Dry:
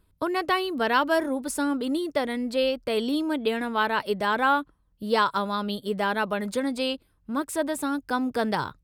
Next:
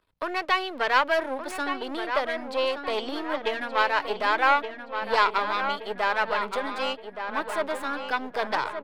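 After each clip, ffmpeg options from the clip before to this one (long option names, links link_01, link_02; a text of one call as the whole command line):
ffmpeg -i in.wav -filter_complex "[0:a]aeval=exprs='if(lt(val(0),0),0.251*val(0),val(0))':channel_layout=same,acrossover=split=480 4700:gain=0.178 1 0.2[link_01][link_02][link_03];[link_01][link_02][link_03]amix=inputs=3:normalize=0,asplit=2[link_04][link_05];[link_05]adelay=1172,lowpass=frequency=3000:poles=1,volume=-7.5dB,asplit=2[link_06][link_07];[link_07]adelay=1172,lowpass=frequency=3000:poles=1,volume=0.54,asplit=2[link_08][link_09];[link_09]adelay=1172,lowpass=frequency=3000:poles=1,volume=0.54,asplit=2[link_10][link_11];[link_11]adelay=1172,lowpass=frequency=3000:poles=1,volume=0.54,asplit=2[link_12][link_13];[link_13]adelay=1172,lowpass=frequency=3000:poles=1,volume=0.54,asplit=2[link_14][link_15];[link_15]adelay=1172,lowpass=frequency=3000:poles=1,volume=0.54,asplit=2[link_16][link_17];[link_17]adelay=1172,lowpass=frequency=3000:poles=1,volume=0.54[link_18];[link_04][link_06][link_08][link_10][link_12][link_14][link_16][link_18]amix=inputs=8:normalize=0,volume=5.5dB" out.wav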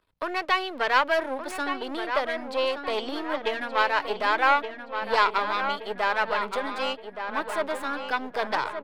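ffmpeg -i in.wav -af anull out.wav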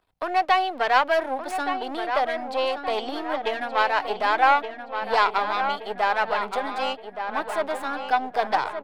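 ffmpeg -i in.wav -af "equalizer=frequency=750:width=6.6:gain=12.5" out.wav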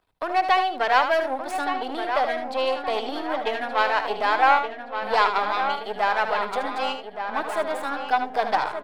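ffmpeg -i in.wav -af "aecho=1:1:76:0.355" out.wav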